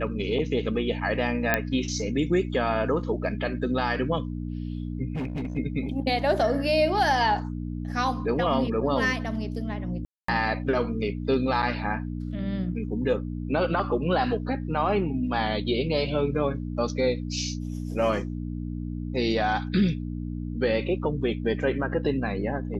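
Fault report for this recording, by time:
mains hum 60 Hz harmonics 5 −32 dBFS
0:01.54: click −7 dBFS
0:05.15–0:05.58: clipping −27 dBFS
0:10.05–0:10.28: drop-out 234 ms

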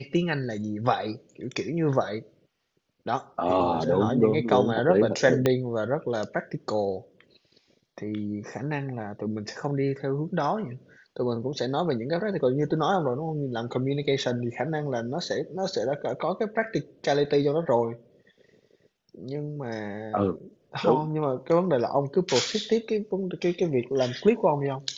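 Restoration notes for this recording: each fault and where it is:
0:05.46: click −9 dBFS

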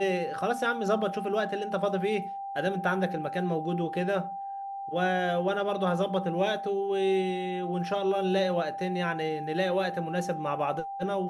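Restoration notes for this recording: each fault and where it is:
whistle 790 Hz −34 dBFS

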